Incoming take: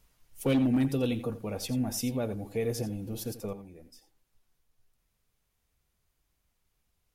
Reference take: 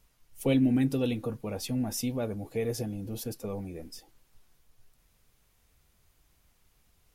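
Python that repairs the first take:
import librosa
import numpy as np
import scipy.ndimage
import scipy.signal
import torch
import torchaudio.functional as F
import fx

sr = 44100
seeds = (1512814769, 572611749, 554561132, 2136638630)

y = fx.fix_declip(x, sr, threshold_db=-20.5)
y = fx.fix_echo_inverse(y, sr, delay_ms=86, level_db=-13.5)
y = fx.fix_level(y, sr, at_s=3.53, step_db=10.0)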